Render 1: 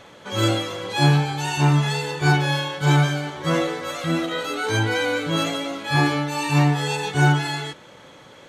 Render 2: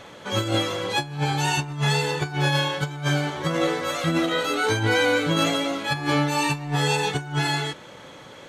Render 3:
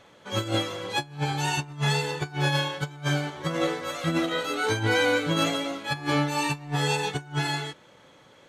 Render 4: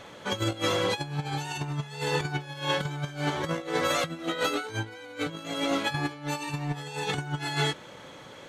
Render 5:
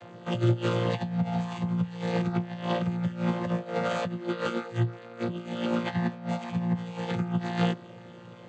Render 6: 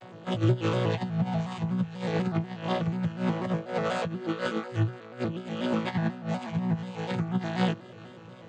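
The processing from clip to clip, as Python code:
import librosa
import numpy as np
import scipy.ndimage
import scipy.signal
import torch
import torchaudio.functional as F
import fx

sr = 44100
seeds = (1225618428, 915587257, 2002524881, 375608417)

y1 = fx.over_compress(x, sr, threshold_db=-22.0, ratio=-0.5)
y2 = fx.upward_expand(y1, sr, threshold_db=-37.0, expansion=1.5)
y2 = y2 * 10.0 ** (-2.0 / 20.0)
y3 = fx.over_compress(y2, sr, threshold_db=-32.0, ratio=-0.5)
y3 = y3 * 10.0 ** (2.5 / 20.0)
y4 = fx.chord_vocoder(y3, sr, chord='bare fifth', root=46)
y4 = y4 * 10.0 ** (2.5 / 20.0)
y5 = y4 + 10.0 ** (-22.0 / 20.0) * np.pad(y4, (int(404 * sr / 1000.0), 0))[:len(y4)]
y5 = fx.vibrato_shape(y5, sr, shape='square', rate_hz=4.1, depth_cents=100.0)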